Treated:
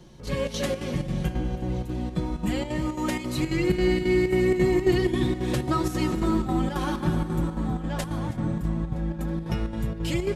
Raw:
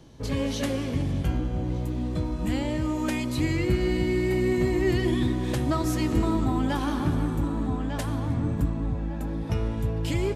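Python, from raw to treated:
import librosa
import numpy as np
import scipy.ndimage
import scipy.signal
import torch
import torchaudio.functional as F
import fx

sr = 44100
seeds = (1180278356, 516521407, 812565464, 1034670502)

y = x + 0.69 * np.pad(x, (int(5.5 * sr / 1000.0), 0))[:len(x)]
y = fx.chopper(y, sr, hz=3.7, depth_pct=60, duty_pct=75)
y = fx.echo_feedback(y, sr, ms=322, feedback_pct=60, wet_db=-18.5)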